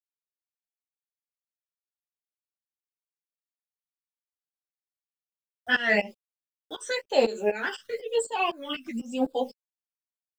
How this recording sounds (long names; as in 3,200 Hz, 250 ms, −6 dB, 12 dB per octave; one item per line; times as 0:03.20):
a quantiser's noise floor 10 bits, dither none
phaser sweep stages 12, 1 Hz, lowest notch 730–2,100 Hz
tremolo saw up 4 Hz, depth 95%
a shimmering, thickened sound